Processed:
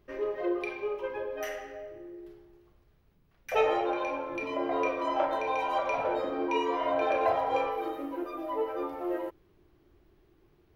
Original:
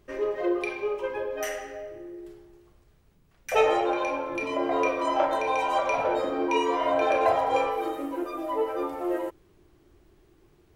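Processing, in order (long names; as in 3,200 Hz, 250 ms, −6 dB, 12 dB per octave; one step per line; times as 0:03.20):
parametric band 8,100 Hz −13 dB 0.74 octaves
level −4 dB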